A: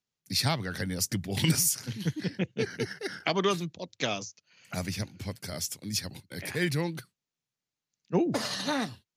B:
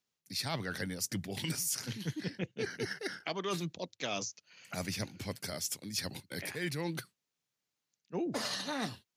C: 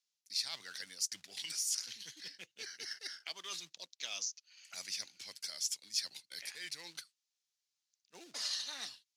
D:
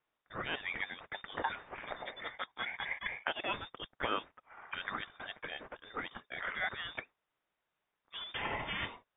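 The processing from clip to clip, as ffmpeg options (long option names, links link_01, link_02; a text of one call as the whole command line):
ffmpeg -i in.wav -af "lowshelf=frequency=130:gain=-9.5,areverse,acompressor=threshold=-36dB:ratio=5,areverse,volume=2.5dB" out.wav
ffmpeg -i in.wav -filter_complex "[0:a]asplit=2[link_01][link_02];[link_02]acrusher=bits=2:mode=log:mix=0:aa=0.000001,volume=-6.5dB[link_03];[link_01][link_03]amix=inputs=2:normalize=0,bandpass=frequency=5300:width_type=q:width=1.2:csg=0,volume=-1dB" out.wav
ffmpeg -i in.wav -af "lowpass=frequency=3200:width_type=q:width=0.5098,lowpass=frequency=3200:width_type=q:width=0.6013,lowpass=frequency=3200:width_type=q:width=0.9,lowpass=frequency=3200:width_type=q:width=2.563,afreqshift=-3800,volume=12dB" out.wav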